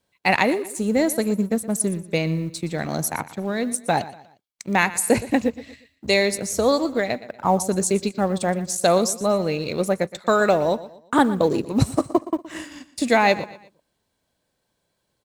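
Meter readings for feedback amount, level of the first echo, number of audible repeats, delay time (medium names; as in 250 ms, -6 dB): 37%, -16.5 dB, 3, 119 ms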